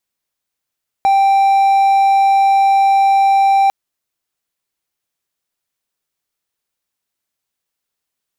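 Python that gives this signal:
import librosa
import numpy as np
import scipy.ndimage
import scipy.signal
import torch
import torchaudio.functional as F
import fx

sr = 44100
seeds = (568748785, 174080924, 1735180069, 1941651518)

y = 10.0 ** (-6.5 / 20.0) * (1.0 - 4.0 * np.abs(np.mod(785.0 * (np.arange(round(2.65 * sr)) / sr) + 0.25, 1.0) - 0.5))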